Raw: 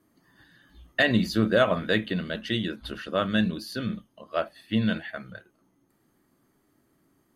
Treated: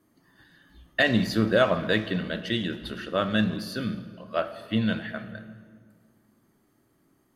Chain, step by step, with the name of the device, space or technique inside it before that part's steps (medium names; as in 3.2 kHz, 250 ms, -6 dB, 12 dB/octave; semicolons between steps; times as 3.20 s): saturated reverb return (on a send at -9 dB: reverberation RT60 1.8 s, pre-delay 14 ms + saturation -22 dBFS, distortion -11 dB)